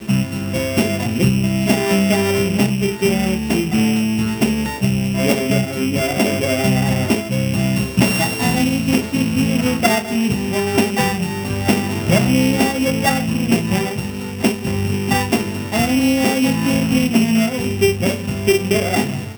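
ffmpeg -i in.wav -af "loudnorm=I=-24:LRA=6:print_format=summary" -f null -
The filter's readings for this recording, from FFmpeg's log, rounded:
Input Integrated:    -17.5 LUFS
Input True Peak:      -2.0 dBTP
Input LRA:             1.2 LU
Input Threshold:     -27.5 LUFS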